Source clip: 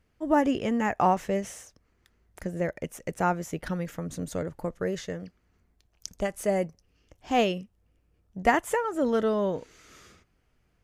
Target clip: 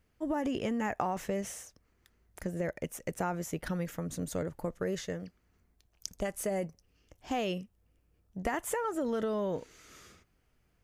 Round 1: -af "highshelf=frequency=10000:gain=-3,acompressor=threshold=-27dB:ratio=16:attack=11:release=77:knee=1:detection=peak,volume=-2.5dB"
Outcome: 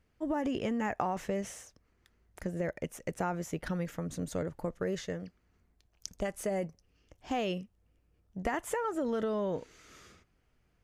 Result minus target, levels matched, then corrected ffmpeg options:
8,000 Hz band −3.5 dB
-af "highshelf=frequency=10000:gain=7.5,acompressor=threshold=-27dB:ratio=16:attack=11:release=77:knee=1:detection=peak,volume=-2.5dB"

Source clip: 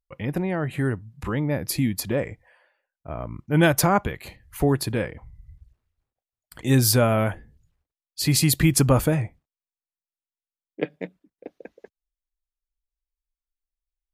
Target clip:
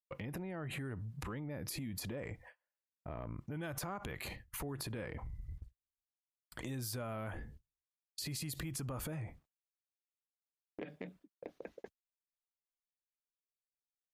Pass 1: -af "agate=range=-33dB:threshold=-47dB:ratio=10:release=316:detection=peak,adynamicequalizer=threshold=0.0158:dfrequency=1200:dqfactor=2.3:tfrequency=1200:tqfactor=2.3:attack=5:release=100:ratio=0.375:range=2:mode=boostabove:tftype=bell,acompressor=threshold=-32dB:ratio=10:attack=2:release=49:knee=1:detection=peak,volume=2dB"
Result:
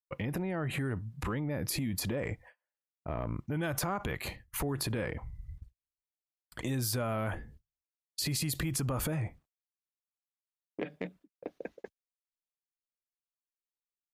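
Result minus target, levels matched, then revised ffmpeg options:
downward compressor: peak gain reduction −8.5 dB
-af "agate=range=-33dB:threshold=-47dB:ratio=10:release=316:detection=peak,adynamicequalizer=threshold=0.0158:dfrequency=1200:dqfactor=2.3:tfrequency=1200:tqfactor=2.3:attack=5:release=100:ratio=0.375:range=2:mode=boostabove:tftype=bell,acompressor=threshold=-41.5dB:ratio=10:attack=2:release=49:knee=1:detection=peak,volume=2dB"

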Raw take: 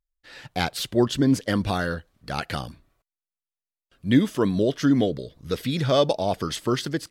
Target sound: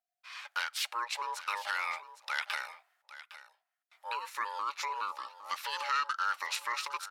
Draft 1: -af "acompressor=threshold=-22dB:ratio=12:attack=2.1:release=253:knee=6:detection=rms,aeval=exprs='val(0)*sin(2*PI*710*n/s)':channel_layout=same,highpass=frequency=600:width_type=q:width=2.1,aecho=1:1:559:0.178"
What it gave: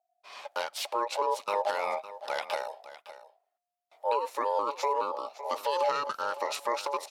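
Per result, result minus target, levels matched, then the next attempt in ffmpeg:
500 Hz band +17.5 dB; echo 250 ms early
-af "acompressor=threshold=-22dB:ratio=12:attack=2.1:release=253:knee=6:detection=rms,aeval=exprs='val(0)*sin(2*PI*710*n/s)':channel_layout=same,highpass=frequency=1500:width_type=q:width=2.1,aecho=1:1:559:0.178"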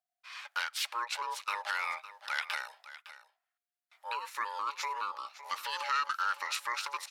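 echo 250 ms early
-af "acompressor=threshold=-22dB:ratio=12:attack=2.1:release=253:knee=6:detection=rms,aeval=exprs='val(0)*sin(2*PI*710*n/s)':channel_layout=same,highpass=frequency=1500:width_type=q:width=2.1,aecho=1:1:809:0.178"

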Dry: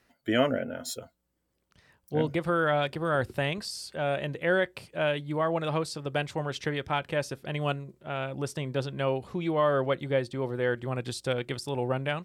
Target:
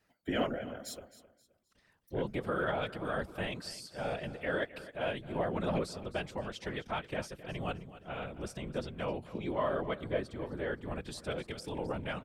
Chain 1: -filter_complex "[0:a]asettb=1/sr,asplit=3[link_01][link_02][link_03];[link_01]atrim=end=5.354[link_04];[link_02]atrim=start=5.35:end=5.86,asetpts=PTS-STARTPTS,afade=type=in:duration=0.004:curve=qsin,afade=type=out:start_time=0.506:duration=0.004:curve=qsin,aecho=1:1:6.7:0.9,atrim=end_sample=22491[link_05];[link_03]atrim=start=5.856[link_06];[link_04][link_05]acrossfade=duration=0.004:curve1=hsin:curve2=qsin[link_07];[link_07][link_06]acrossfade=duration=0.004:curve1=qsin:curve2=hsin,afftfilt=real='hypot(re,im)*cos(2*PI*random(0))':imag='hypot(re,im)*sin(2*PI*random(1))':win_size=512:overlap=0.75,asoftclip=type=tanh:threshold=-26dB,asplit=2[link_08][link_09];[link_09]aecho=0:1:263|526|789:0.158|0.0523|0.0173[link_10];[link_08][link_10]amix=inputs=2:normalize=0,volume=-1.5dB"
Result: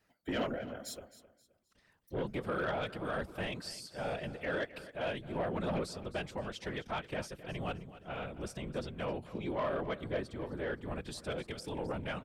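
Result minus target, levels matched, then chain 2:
soft clipping: distortion +18 dB
-filter_complex "[0:a]asettb=1/sr,asplit=3[link_01][link_02][link_03];[link_01]atrim=end=5.354[link_04];[link_02]atrim=start=5.35:end=5.86,asetpts=PTS-STARTPTS,afade=type=in:duration=0.004:curve=qsin,afade=type=out:start_time=0.506:duration=0.004:curve=qsin,aecho=1:1:6.7:0.9,atrim=end_sample=22491[link_05];[link_03]atrim=start=5.856[link_06];[link_04][link_05]acrossfade=duration=0.004:curve1=hsin:curve2=qsin[link_07];[link_07][link_06]acrossfade=duration=0.004:curve1=qsin:curve2=hsin,afftfilt=real='hypot(re,im)*cos(2*PI*random(0))':imag='hypot(re,im)*sin(2*PI*random(1))':win_size=512:overlap=0.75,asoftclip=type=tanh:threshold=-14.5dB,asplit=2[link_08][link_09];[link_09]aecho=0:1:263|526|789:0.158|0.0523|0.0173[link_10];[link_08][link_10]amix=inputs=2:normalize=0,volume=-1.5dB"

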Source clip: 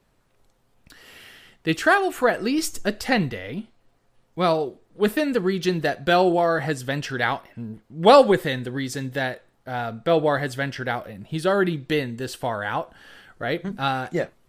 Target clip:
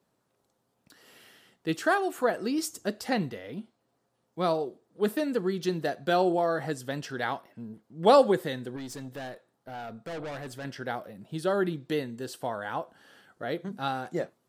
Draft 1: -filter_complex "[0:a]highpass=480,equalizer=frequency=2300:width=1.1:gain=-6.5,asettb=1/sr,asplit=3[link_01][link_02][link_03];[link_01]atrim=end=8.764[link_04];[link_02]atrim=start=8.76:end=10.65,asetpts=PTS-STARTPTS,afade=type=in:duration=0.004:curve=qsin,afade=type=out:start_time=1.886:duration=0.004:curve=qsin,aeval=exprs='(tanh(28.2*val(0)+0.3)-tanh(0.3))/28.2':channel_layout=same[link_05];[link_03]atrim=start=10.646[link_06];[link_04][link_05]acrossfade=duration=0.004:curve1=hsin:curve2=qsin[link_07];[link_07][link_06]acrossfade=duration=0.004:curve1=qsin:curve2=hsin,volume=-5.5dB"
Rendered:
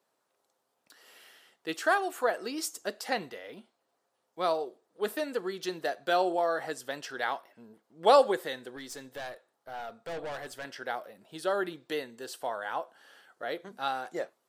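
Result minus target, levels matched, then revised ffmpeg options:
125 Hz band −13.5 dB
-filter_complex "[0:a]highpass=150,equalizer=frequency=2300:width=1.1:gain=-6.5,asettb=1/sr,asplit=3[link_01][link_02][link_03];[link_01]atrim=end=8.764[link_04];[link_02]atrim=start=8.76:end=10.65,asetpts=PTS-STARTPTS,afade=type=in:duration=0.004:curve=qsin,afade=type=out:start_time=1.886:duration=0.004:curve=qsin,aeval=exprs='(tanh(28.2*val(0)+0.3)-tanh(0.3))/28.2':channel_layout=same[link_05];[link_03]atrim=start=10.646[link_06];[link_04][link_05]acrossfade=duration=0.004:curve1=hsin:curve2=qsin[link_07];[link_07][link_06]acrossfade=duration=0.004:curve1=qsin:curve2=hsin,volume=-5.5dB"

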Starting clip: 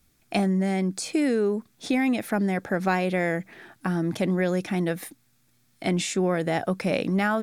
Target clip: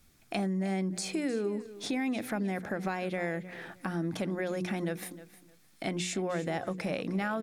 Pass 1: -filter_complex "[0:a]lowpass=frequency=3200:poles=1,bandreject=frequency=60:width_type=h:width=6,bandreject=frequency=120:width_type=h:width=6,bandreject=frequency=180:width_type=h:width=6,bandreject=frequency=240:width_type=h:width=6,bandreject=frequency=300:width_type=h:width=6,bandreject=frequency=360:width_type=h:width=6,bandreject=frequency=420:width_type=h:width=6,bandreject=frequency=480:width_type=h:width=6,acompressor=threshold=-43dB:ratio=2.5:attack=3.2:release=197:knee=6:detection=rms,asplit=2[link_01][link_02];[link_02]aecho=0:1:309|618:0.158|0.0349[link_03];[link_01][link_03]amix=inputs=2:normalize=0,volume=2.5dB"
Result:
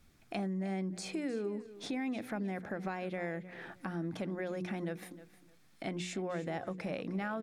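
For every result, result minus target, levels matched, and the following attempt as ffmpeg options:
downward compressor: peak gain reduction +4.5 dB; 8,000 Hz band −4.5 dB
-filter_complex "[0:a]lowpass=frequency=3200:poles=1,bandreject=frequency=60:width_type=h:width=6,bandreject=frequency=120:width_type=h:width=6,bandreject=frequency=180:width_type=h:width=6,bandreject=frequency=240:width_type=h:width=6,bandreject=frequency=300:width_type=h:width=6,bandreject=frequency=360:width_type=h:width=6,bandreject=frequency=420:width_type=h:width=6,bandreject=frequency=480:width_type=h:width=6,acompressor=threshold=-35dB:ratio=2.5:attack=3.2:release=197:knee=6:detection=rms,asplit=2[link_01][link_02];[link_02]aecho=0:1:309|618:0.158|0.0349[link_03];[link_01][link_03]amix=inputs=2:normalize=0,volume=2.5dB"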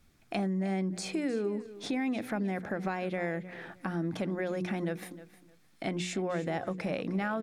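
8,000 Hz band −4.5 dB
-filter_complex "[0:a]lowpass=frequency=11000:poles=1,bandreject=frequency=60:width_type=h:width=6,bandreject=frequency=120:width_type=h:width=6,bandreject=frequency=180:width_type=h:width=6,bandreject=frequency=240:width_type=h:width=6,bandreject=frequency=300:width_type=h:width=6,bandreject=frequency=360:width_type=h:width=6,bandreject=frequency=420:width_type=h:width=6,bandreject=frequency=480:width_type=h:width=6,acompressor=threshold=-35dB:ratio=2.5:attack=3.2:release=197:knee=6:detection=rms,asplit=2[link_01][link_02];[link_02]aecho=0:1:309|618:0.158|0.0349[link_03];[link_01][link_03]amix=inputs=2:normalize=0,volume=2.5dB"

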